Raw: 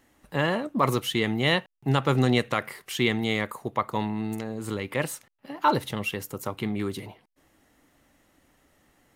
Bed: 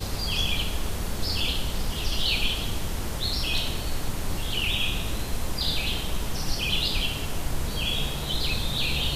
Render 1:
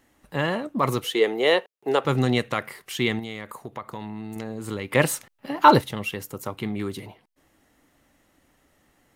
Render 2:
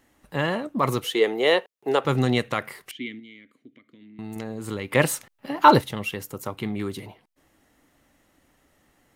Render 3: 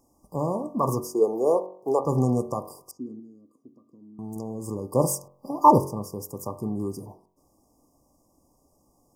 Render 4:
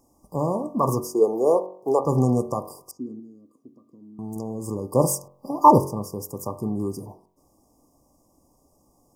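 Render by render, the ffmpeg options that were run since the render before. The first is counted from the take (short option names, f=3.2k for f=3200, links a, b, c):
-filter_complex "[0:a]asettb=1/sr,asplit=3[a][b][c];[a]atrim=end=1.044[d];[b]atrim=start=1.04:end=2.05,asetpts=PTS-STARTPTS,afade=t=in:d=0.004:c=qsin,afade=t=out:st=1.006:d=0.004:c=qsin,highpass=f=440:t=q:w=3.7[e];[c]atrim=start=2.046[f];[d][e]acrossfade=d=0.004:c1=hsin:c2=qsin[g];[g][f]acrossfade=d=0.004:c1=qsin:c2=hsin,asettb=1/sr,asplit=3[h][i][j];[h]atrim=end=3.194[k];[i]atrim=start=3.19:end=4.36,asetpts=PTS-STARTPTS,afade=t=in:d=0.004:c=qsin,afade=t=out:st=1.166:d=0.004:c=qsin,acompressor=threshold=-32dB:ratio=3:attack=3.2:release=140:knee=1:detection=peak[l];[j]atrim=start=4.356[m];[k][l]acrossfade=d=0.004:c1=hsin:c2=qsin[n];[n][m]acrossfade=d=0.004:c1=qsin:c2=hsin,asplit=3[o][p][q];[o]atrim=end=4.932[r];[p]atrim=start=4.928:end=5.812,asetpts=PTS-STARTPTS,volume=8dB[s];[q]atrim=start=5.808[t];[r][s]acrossfade=d=0.004:c1=hsin:c2=hsin[u];[u][t]acrossfade=d=0.004:c1=hsin:c2=hsin"
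-filter_complex "[0:a]asettb=1/sr,asplit=3[a][b][c];[a]atrim=end=2.914[d];[b]atrim=start=2.91:end=4.19,asetpts=PTS-STARTPTS,afade=t=in:d=0.004:c=qsin,afade=t=out:st=1.276:d=0.004:c=qsin,asplit=3[e][f][g];[e]bandpass=f=270:t=q:w=8,volume=0dB[h];[f]bandpass=f=2.29k:t=q:w=8,volume=-6dB[i];[g]bandpass=f=3.01k:t=q:w=8,volume=-9dB[j];[h][i][j]amix=inputs=3:normalize=0[k];[c]atrim=start=4.186[l];[d][k]acrossfade=d=0.004:c1=hsin:c2=qsin[m];[m][l]acrossfade=d=0.004:c1=qsin:c2=hsin"
-af "afftfilt=real='re*(1-between(b*sr/4096,1200,4700))':imag='im*(1-between(b*sr/4096,1200,4700))':win_size=4096:overlap=0.75,bandreject=f=46.14:t=h:w=4,bandreject=f=92.28:t=h:w=4,bandreject=f=138.42:t=h:w=4,bandreject=f=184.56:t=h:w=4,bandreject=f=230.7:t=h:w=4,bandreject=f=276.84:t=h:w=4,bandreject=f=322.98:t=h:w=4,bandreject=f=369.12:t=h:w=4,bandreject=f=415.26:t=h:w=4,bandreject=f=461.4:t=h:w=4,bandreject=f=507.54:t=h:w=4,bandreject=f=553.68:t=h:w=4,bandreject=f=599.82:t=h:w=4,bandreject=f=645.96:t=h:w=4,bandreject=f=692.1:t=h:w=4,bandreject=f=738.24:t=h:w=4,bandreject=f=784.38:t=h:w=4,bandreject=f=830.52:t=h:w=4,bandreject=f=876.66:t=h:w=4,bandreject=f=922.8:t=h:w=4,bandreject=f=968.94:t=h:w=4,bandreject=f=1.01508k:t=h:w=4,bandreject=f=1.06122k:t=h:w=4,bandreject=f=1.10736k:t=h:w=4,bandreject=f=1.1535k:t=h:w=4,bandreject=f=1.19964k:t=h:w=4,bandreject=f=1.24578k:t=h:w=4,bandreject=f=1.29192k:t=h:w=4,bandreject=f=1.33806k:t=h:w=4,bandreject=f=1.3842k:t=h:w=4,bandreject=f=1.43034k:t=h:w=4,bandreject=f=1.47648k:t=h:w=4,bandreject=f=1.52262k:t=h:w=4,bandreject=f=1.56876k:t=h:w=4,bandreject=f=1.6149k:t=h:w=4,bandreject=f=1.66104k:t=h:w=4"
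-af "volume=2.5dB,alimiter=limit=-2dB:level=0:latency=1"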